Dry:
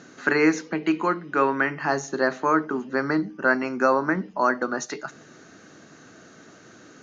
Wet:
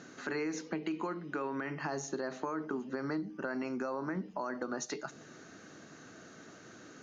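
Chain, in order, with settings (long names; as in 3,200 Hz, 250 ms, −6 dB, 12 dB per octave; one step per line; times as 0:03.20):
brickwall limiter −17 dBFS, peak gain reduction 9.5 dB
dynamic equaliser 1,600 Hz, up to −5 dB, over −43 dBFS, Q 1.1
downward compressor 4 to 1, threshold −29 dBFS, peak gain reduction 7 dB
level −4 dB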